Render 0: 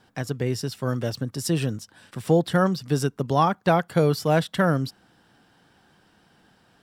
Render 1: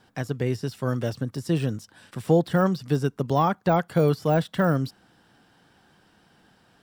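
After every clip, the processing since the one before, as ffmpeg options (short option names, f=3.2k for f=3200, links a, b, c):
-af "deesser=0.95"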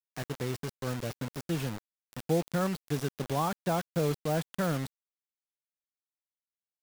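-af "acrusher=bits=4:mix=0:aa=0.000001,volume=-8.5dB"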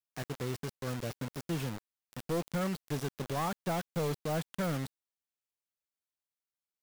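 -af "asoftclip=type=hard:threshold=-26dB,volume=-2dB"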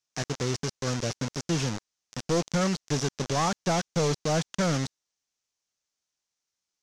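-af "lowpass=f=6.1k:t=q:w=3.4,volume=7dB"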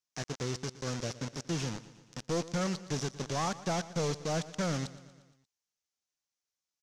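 -af "aecho=1:1:117|234|351|468|585:0.141|0.0819|0.0475|0.0276|0.016,volume=-6.5dB"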